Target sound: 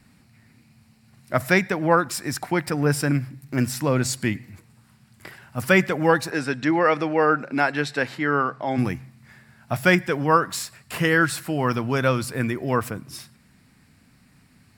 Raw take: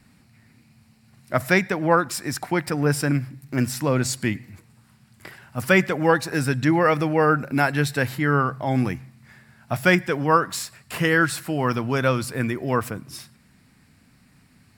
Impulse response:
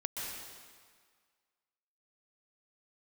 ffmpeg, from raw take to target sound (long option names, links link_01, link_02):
-filter_complex "[0:a]asplit=3[link_01][link_02][link_03];[link_01]afade=type=out:start_time=6.3:duration=0.02[link_04];[link_02]highpass=240,lowpass=5900,afade=type=in:start_time=6.3:duration=0.02,afade=type=out:start_time=8.77:duration=0.02[link_05];[link_03]afade=type=in:start_time=8.77:duration=0.02[link_06];[link_04][link_05][link_06]amix=inputs=3:normalize=0"